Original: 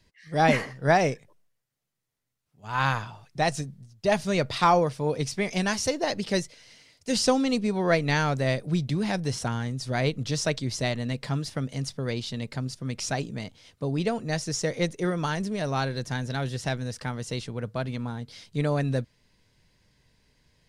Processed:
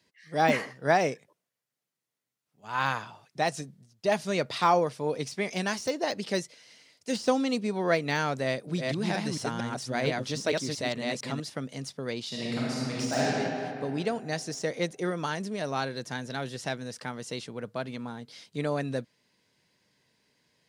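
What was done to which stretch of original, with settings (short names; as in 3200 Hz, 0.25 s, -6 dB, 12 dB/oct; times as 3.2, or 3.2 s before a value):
8.46–11.4 reverse delay 0.229 s, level -2 dB
12.27–13.32 reverb throw, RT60 2.7 s, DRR -7 dB
whole clip: de-esser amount 70%; HPF 200 Hz 12 dB/oct; gain -2 dB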